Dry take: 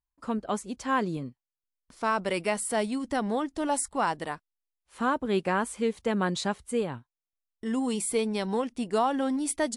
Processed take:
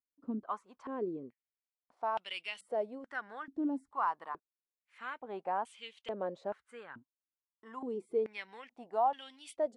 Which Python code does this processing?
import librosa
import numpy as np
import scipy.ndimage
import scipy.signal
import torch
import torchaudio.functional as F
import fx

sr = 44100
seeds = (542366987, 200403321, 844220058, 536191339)

y = fx.filter_held_bandpass(x, sr, hz=2.3, low_hz=280.0, high_hz=3000.0)